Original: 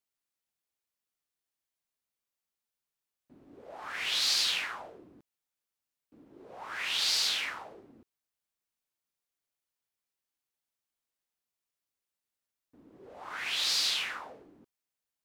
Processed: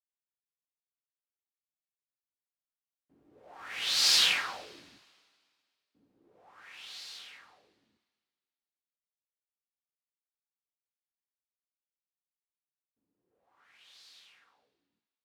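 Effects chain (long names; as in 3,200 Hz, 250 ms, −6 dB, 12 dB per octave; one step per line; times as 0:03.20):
source passing by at 0:04.22, 21 m/s, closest 4 metres
coupled-rooms reverb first 0.28 s, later 2 s, from −18 dB, DRR 7 dB
level +5 dB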